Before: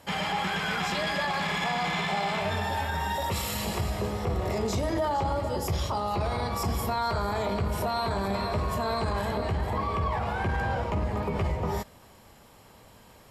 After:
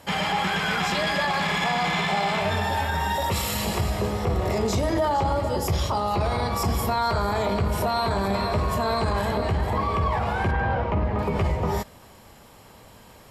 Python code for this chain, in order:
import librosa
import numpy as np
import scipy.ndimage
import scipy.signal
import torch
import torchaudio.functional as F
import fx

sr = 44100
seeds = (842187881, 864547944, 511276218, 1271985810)

y = fx.lowpass(x, sr, hz=2800.0, slope=12, at=(10.51, 11.19))
y = y * librosa.db_to_amplitude(4.5)